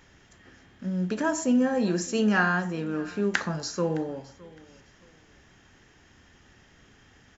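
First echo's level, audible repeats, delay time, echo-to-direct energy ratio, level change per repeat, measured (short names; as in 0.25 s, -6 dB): -22.0 dB, 2, 0.613 s, -21.5 dB, -12.0 dB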